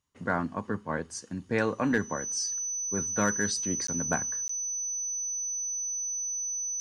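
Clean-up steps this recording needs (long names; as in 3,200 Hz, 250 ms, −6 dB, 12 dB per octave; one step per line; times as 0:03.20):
clipped peaks rebuilt −15.5 dBFS
notch filter 6,000 Hz, Q 30
repair the gap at 0:03.87/0:04.48, 14 ms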